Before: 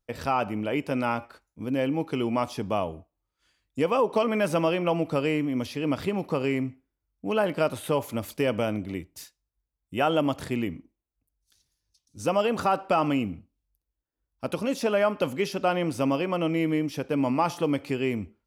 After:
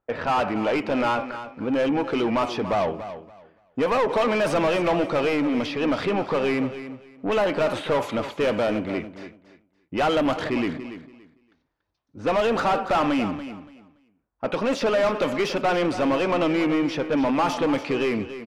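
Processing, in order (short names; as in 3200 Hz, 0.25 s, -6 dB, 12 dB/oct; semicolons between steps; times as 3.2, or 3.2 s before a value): low-pass opened by the level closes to 1200 Hz, open at -20 dBFS; overdrive pedal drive 24 dB, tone 2000 Hz, clips at -12 dBFS; vibrato 5.5 Hz 32 cents; feedback echo 0.285 s, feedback 21%, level -12 dB; gain -2 dB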